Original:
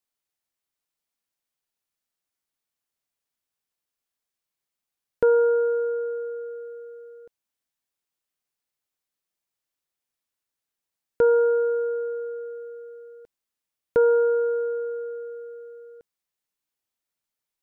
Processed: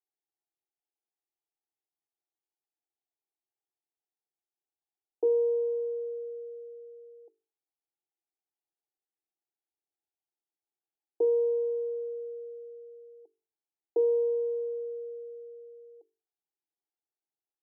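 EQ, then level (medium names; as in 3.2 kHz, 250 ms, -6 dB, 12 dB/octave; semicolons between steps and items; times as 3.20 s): Chebyshev band-pass 310–850 Hz, order 5; hum notches 50/100/150/200/250/300/350/400/450 Hz; static phaser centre 560 Hz, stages 6; 0.0 dB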